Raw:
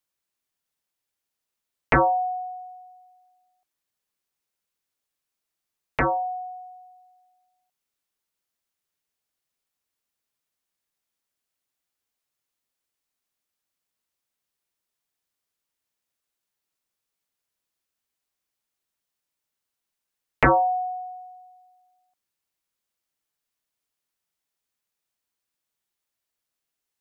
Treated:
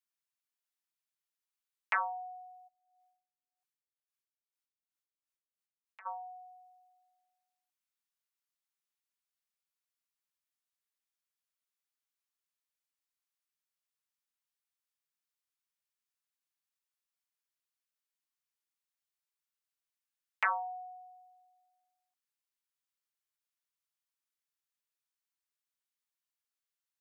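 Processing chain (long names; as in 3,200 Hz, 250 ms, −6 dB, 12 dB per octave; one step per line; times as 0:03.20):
high-pass filter 930 Hz 24 dB per octave
0:02.67–0:06.05: tremolo with a sine in dB 1.3 Hz → 4 Hz, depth 23 dB
level −9 dB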